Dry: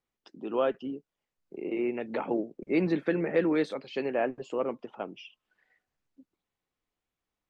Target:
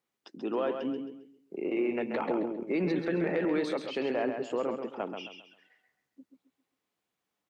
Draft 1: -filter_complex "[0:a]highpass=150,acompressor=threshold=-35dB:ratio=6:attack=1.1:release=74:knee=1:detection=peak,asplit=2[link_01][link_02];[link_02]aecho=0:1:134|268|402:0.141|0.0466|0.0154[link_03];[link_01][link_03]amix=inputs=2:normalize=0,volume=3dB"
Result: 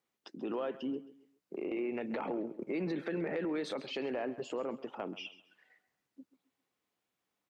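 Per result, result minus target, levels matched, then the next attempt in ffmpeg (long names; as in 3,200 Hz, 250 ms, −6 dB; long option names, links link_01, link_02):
echo-to-direct −10.5 dB; downward compressor: peak gain reduction +6 dB
-filter_complex "[0:a]highpass=150,acompressor=threshold=-35dB:ratio=6:attack=1.1:release=74:knee=1:detection=peak,asplit=2[link_01][link_02];[link_02]aecho=0:1:134|268|402|536:0.473|0.156|0.0515|0.017[link_03];[link_01][link_03]amix=inputs=2:normalize=0,volume=3dB"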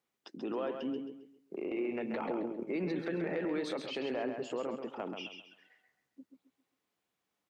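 downward compressor: peak gain reduction +6 dB
-filter_complex "[0:a]highpass=150,acompressor=threshold=-28dB:ratio=6:attack=1.1:release=74:knee=1:detection=peak,asplit=2[link_01][link_02];[link_02]aecho=0:1:134|268|402|536:0.473|0.156|0.0515|0.017[link_03];[link_01][link_03]amix=inputs=2:normalize=0,volume=3dB"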